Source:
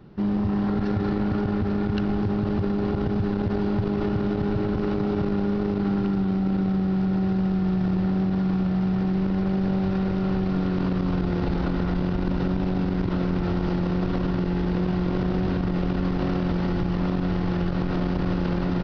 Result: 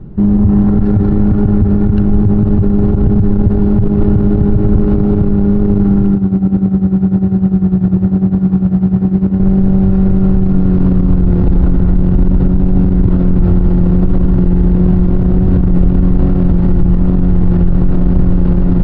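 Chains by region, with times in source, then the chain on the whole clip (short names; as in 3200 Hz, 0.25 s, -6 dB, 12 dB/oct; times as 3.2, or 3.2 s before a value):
6.15–9.4 HPF 75 Hz + tremolo 10 Hz, depth 76%
whole clip: tilt -4.5 dB/oct; maximiser +5.5 dB; gain -1 dB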